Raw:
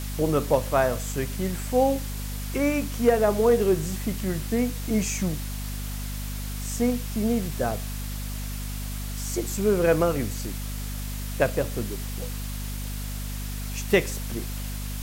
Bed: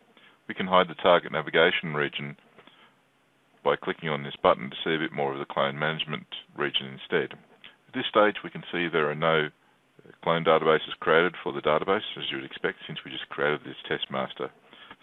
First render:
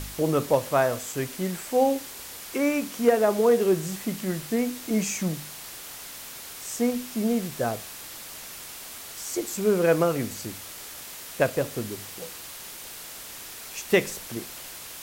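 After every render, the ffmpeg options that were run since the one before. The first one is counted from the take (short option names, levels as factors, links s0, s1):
-af "bandreject=f=50:t=h:w=4,bandreject=f=100:t=h:w=4,bandreject=f=150:t=h:w=4,bandreject=f=200:t=h:w=4,bandreject=f=250:t=h:w=4"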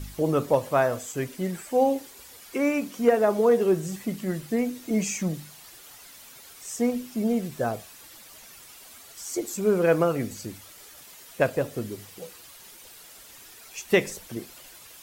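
-af "afftdn=nr=10:nf=-41"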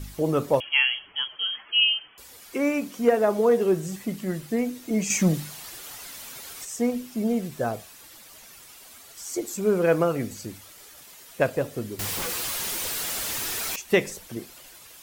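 -filter_complex "[0:a]asettb=1/sr,asplit=3[s0][s1][s2];[s0]atrim=end=0.604[s3];[s1]atrim=start=0.6:end=2.18,asetpts=PTS-STARTPTS,afade=t=in:d=0.004:c=qsin,afade=t=out:st=1.576:d=0.004:c=qsin,lowpass=f=2900:t=q:w=0.5098,lowpass=f=2900:t=q:w=0.6013,lowpass=f=2900:t=q:w=0.9,lowpass=f=2900:t=q:w=2.563,afreqshift=-3400[s4];[s2]atrim=start=2.176[s5];[s3][s4]acrossfade=d=0.004:c1=hsin:c2=qsin[s6];[s6][s5]acrossfade=d=0.004:c1=qsin:c2=hsin,asettb=1/sr,asplit=3[s7][s8][s9];[s7]atrim=end=5.104[s10];[s8]atrim=start=5.1:end=6.65,asetpts=PTS-STARTPTS,afade=t=in:d=0.004:c=qsin,afade=t=out:st=1.546:d=0.004:c=qsin,acontrast=86[s11];[s9]atrim=start=6.646[s12];[s10][s11]acrossfade=d=0.004:c1=hsin:c2=qsin[s13];[s13][s12]acrossfade=d=0.004:c1=qsin:c2=hsin,asettb=1/sr,asplit=3[s14][s15][s16];[s14]atrim=end=11.994[s17];[s15]atrim=start=11.99:end=13.76,asetpts=PTS-STARTPTS,afade=t=in:d=0.004:c=qsin,afade=t=out:st=1.766:d=0.004:c=qsin,aeval=exprs='0.0473*sin(PI/2*7.94*val(0)/0.0473)':c=same[s18];[s16]atrim=start=13.756[s19];[s17][s18]acrossfade=d=0.004:c1=hsin:c2=qsin[s20];[s20][s19]acrossfade=d=0.004:c1=qsin:c2=hsin"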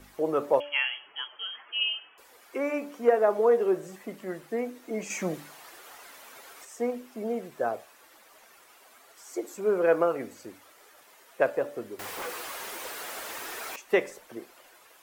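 -filter_complex "[0:a]acrossover=split=320 2100:gain=0.1 1 0.251[s0][s1][s2];[s0][s1][s2]amix=inputs=3:normalize=0,bandreject=f=289.8:t=h:w=4,bandreject=f=579.6:t=h:w=4,bandreject=f=869.4:t=h:w=4,bandreject=f=1159.2:t=h:w=4,bandreject=f=1449:t=h:w=4,bandreject=f=1738.8:t=h:w=4,bandreject=f=2028.6:t=h:w=4,bandreject=f=2318.4:t=h:w=4,bandreject=f=2608.2:t=h:w=4,bandreject=f=2898:t=h:w=4,bandreject=f=3187.8:t=h:w=4,bandreject=f=3477.6:t=h:w=4,bandreject=f=3767.4:t=h:w=4,bandreject=f=4057.2:t=h:w=4,bandreject=f=4347:t=h:w=4,bandreject=f=4636.8:t=h:w=4,bandreject=f=4926.6:t=h:w=4,bandreject=f=5216.4:t=h:w=4,bandreject=f=5506.2:t=h:w=4,bandreject=f=5796:t=h:w=4,bandreject=f=6085.8:t=h:w=4,bandreject=f=6375.6:t=h:w=4,bandreject=f=6665.4:t=h:w=4,bandreject=f=6955.2:t=h:w=4,bandreject=f=7245:t=h:w=4,bandreject=f=7534.8:t=h:w=4,bandreject=f=7824.6:t=h:w=4,bandreject=f=8114.4:t=h:w=4,bandreject=f=8404.2:t=h:w=4,bandreject=f=8694:t=h:w=4,bandreject=f=8983.8:t=h:w=4,bandreject=f=9273.6:t=h:w=4"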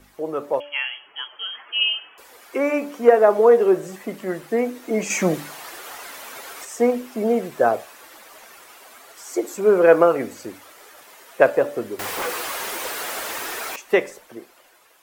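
-af "dynaudnorm=f=210:g=13:m=3.76"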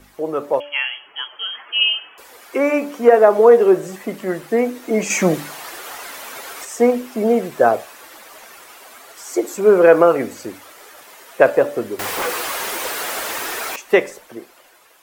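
-af "volume=1.58,alimiter=limit=0.891:level=0:latency=1"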